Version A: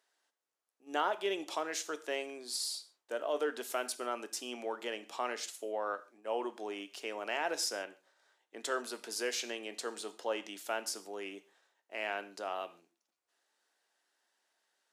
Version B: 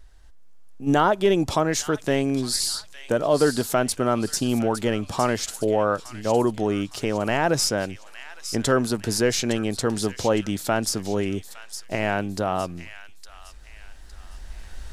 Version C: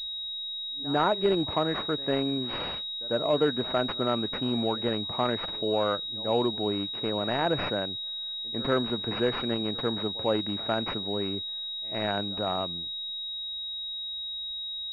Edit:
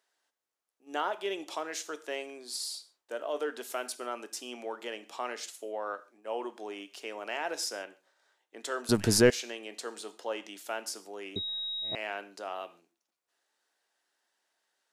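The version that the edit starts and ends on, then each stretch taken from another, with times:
A
8.89–9.30 s: from B
11.36–11.95 s: from C

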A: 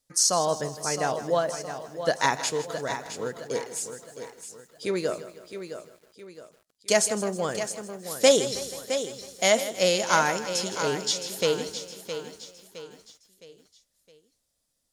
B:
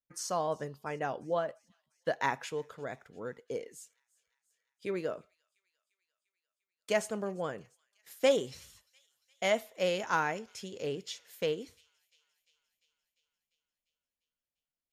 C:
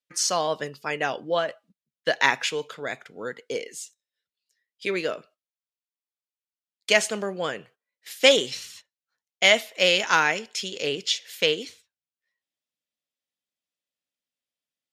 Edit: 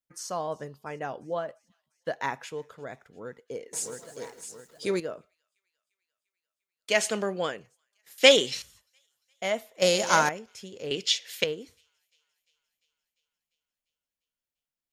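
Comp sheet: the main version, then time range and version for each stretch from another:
B
3.73–5.00 s: from A
6.96–7.52 s: from C, crossfade 0.24 s
8.18–8.62 s: from C
9.82–10.29 s: from A
10.91–11.44 s: from C

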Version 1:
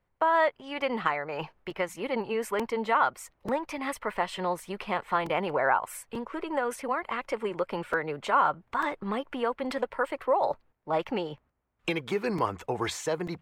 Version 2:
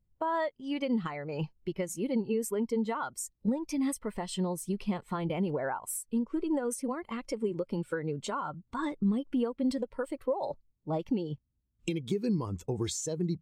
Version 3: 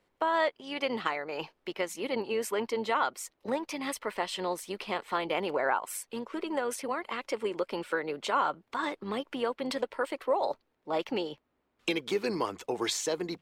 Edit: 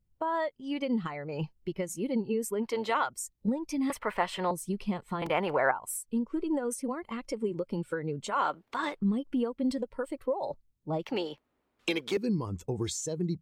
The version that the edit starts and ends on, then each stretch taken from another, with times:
2
2.66–3.06 s: from 3, crossfade 0.10 s
3.90–4.51 s: from 1
5.22–5.71 s: from 1
8.34–8.97 s: from 3, crossfade 0.16 s
11.04–12.17 s: from 3

